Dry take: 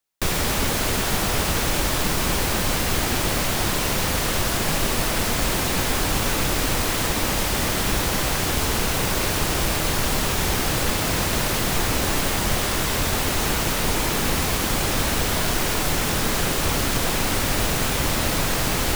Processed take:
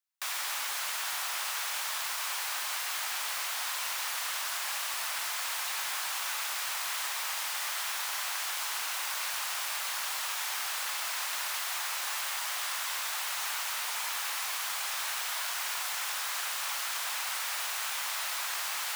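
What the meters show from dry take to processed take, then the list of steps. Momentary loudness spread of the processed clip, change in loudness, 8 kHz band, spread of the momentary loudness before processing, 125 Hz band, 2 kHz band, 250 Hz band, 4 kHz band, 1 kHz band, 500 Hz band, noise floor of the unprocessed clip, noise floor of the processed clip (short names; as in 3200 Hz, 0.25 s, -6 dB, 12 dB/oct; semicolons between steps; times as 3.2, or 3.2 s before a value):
0 LU, -10.0 dB, -8.5 dB, 0 LU, under -40 dB, -8.5 dB, under -40 dB, -8.5 dB, -10.5 dB, -24.5 dB, -24 dBFS, -35 dBFS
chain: HPF 890 Hz 24 dB/oct; gain -8.5 dB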